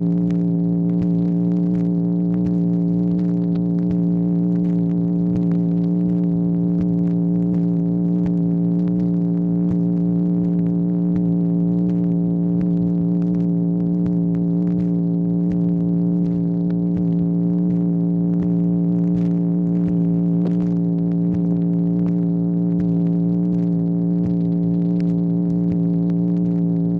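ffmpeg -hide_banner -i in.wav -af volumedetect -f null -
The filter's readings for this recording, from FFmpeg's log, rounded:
mean_volume: -18.1 dB
max_volume: -9.2 dB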